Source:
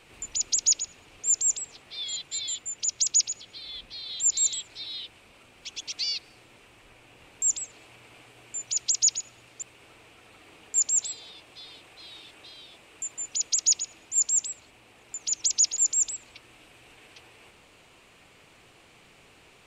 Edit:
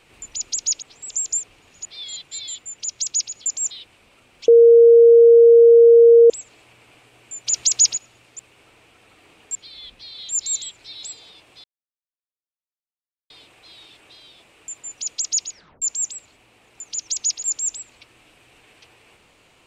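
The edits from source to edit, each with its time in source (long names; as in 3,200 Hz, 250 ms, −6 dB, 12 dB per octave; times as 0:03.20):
0:00.82–0:01.85: reverse
0:03.46–0:04.94: swap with 0:10.78–0:11.03
0:05.71–0:07.53: beep over 466 Hz −6 dBFS
0:08.70–0:09.20: clip gain +7 dB
0:11.64: splice in silence 1.66 s
0:13.84: tape stop 0.32 s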